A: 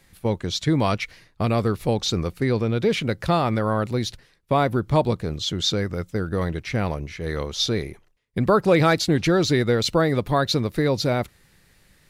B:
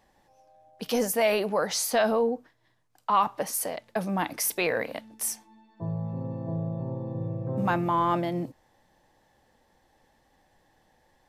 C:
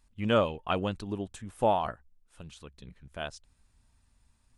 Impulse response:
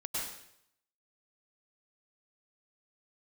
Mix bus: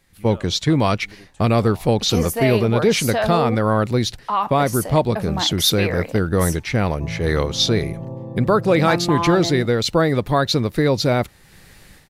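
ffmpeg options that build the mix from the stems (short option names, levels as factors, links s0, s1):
-filter_complex "[0:a]dynaudnorm=f=130:g=3:m=6.31,volume=0.562[s0];[1:a]adelay=1200,volume=1.26[s1];[2:a]acompressor=threshold=0.0112:ratio=2,volume=0.473[s2];[s0][s1][s2]amix=inputs=3:normalize=0"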